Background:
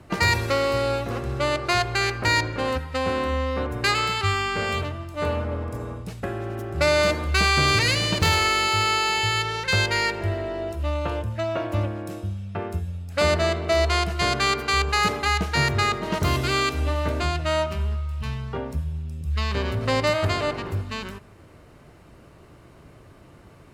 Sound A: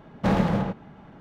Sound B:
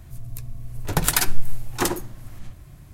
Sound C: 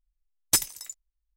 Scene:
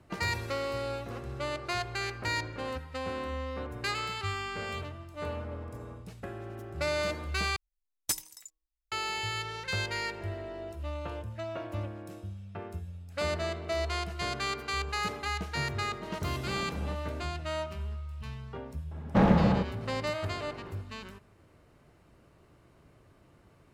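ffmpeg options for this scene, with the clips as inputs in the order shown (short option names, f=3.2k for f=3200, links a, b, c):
-filter_complex "[1:a]asplit=2[a][b];[0:a]volume=-11dB[c];[3:a]bandreject=f=157.7:t=h:w=4,bandreject=f=315.4:t=h:w=4,bandreject=f=473.1:t=h:w=4,bandreject=f=630.8:t=h:w=4,bandreject=f=788.5:t=h:w=4,bandreject=f=946.2:t=h:w=4,bandreject=f=1.1039k:t=h:w=4[d];[a]acompressor=threshold=-25dB:ratio=6:attack=3.2:release=140:knee=1:detection=peak[e];[b]highshelf=f=4k:g=-10[f];[c]asplit=2[g][h];[g]atrim=end=7.564[i];[d]atrim=end=1.36,asetpts=PTS-STARTPTS,volume=-9dB[j];[h]atrim=start=8.916[k];[e]atrim=end=1.2,asetpts=PTS-STARTPTS,volume=-11dB,afade=t=in:d=0.004:c=hsin,afade=t=out:st=1.196:d=0.004:c=hsin,adelay=16230[l];[f]atrim=end=1.2,asetpts=PTS-STARTPTS,afade=t=in:d=0.004:c=hsin,afade=t=out:st=1.196:d=0.004:c=hsin,adelay=18910[m];[i][j]acrossfade=d=0.004:c1=hsin:c2=hsin[n];[n][k]acrossfade=d=0.004:c1=hsin:c2=hsin[o];[o][l][m]amix=inputs=3:normalize=0"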